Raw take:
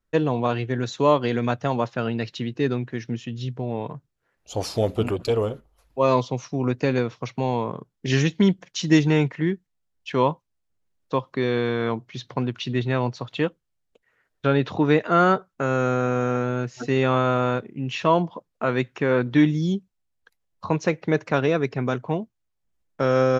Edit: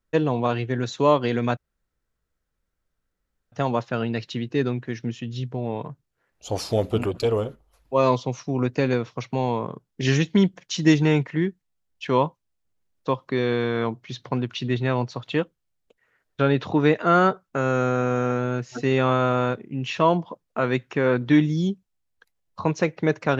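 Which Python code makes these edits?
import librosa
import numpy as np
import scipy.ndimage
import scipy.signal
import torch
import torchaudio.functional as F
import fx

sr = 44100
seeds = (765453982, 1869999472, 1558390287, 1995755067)

y = fx.edit(x, sr, fx.insert_room_tone(at_s=1.57, length_s=1.95), tone=tone)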